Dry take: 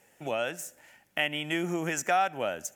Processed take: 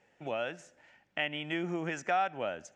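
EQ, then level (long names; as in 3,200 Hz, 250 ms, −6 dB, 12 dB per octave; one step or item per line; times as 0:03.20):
low-pass filter 5,900 Hz 12 dB per octave
high-frequency loss of the air 88 metres
−3.5 dB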